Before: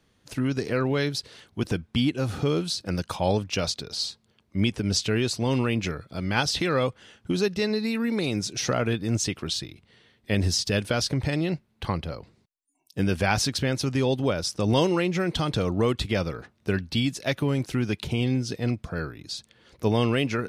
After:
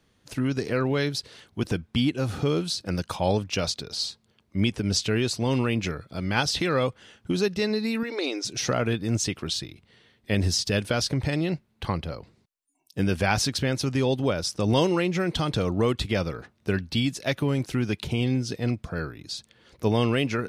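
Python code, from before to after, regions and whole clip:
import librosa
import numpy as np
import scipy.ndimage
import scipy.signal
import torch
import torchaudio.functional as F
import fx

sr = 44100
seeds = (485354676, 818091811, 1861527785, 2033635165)

y = fx.chain(x, sr, fx.brickwall_highpass(low_hz=250.0),
    fx.high_shelf_res(hz=7400.0, db=-9.5, q=1.5), at=(8.03, 8.45))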